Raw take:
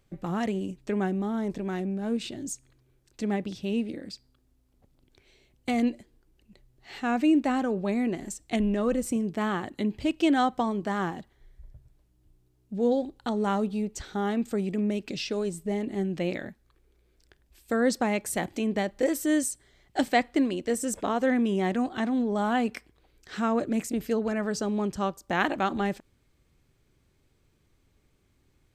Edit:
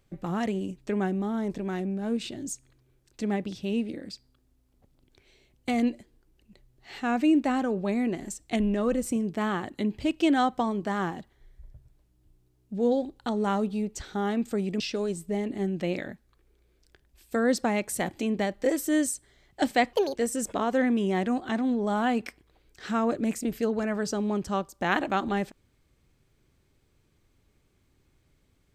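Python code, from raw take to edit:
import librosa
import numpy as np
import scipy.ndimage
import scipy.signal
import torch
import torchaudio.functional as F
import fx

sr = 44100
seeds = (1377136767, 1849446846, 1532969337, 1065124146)

y = fx.edit(x, sr, fx.cut(start_s=14.8, length_s=0.37),
    fx.speed_span(start_s=20.3, length_s=0.34, speed=1.51), tone=tone)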